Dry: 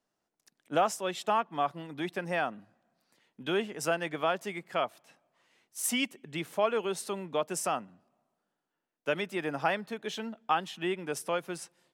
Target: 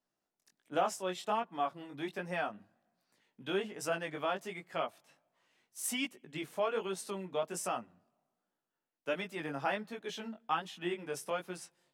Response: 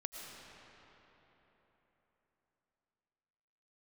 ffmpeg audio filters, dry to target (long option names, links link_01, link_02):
-af "flanger=delay=16:depth=6.1:speed=1.3,volume=-2dB"